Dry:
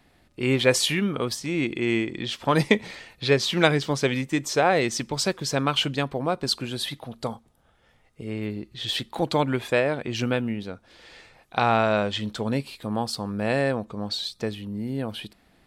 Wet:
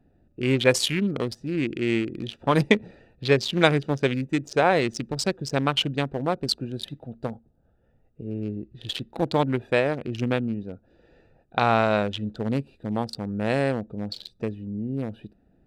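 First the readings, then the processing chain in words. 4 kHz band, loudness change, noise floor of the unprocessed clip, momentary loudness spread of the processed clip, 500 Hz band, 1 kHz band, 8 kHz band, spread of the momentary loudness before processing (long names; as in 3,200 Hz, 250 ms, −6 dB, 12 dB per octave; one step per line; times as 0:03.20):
−2.5 dB, −0.5 dB, −62 dBFS, 13 LU, 0.0 dB, −0.5 dB, −4.5 dB, 12 LU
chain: adaptive Wiener filter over 41 samples
level +1 dB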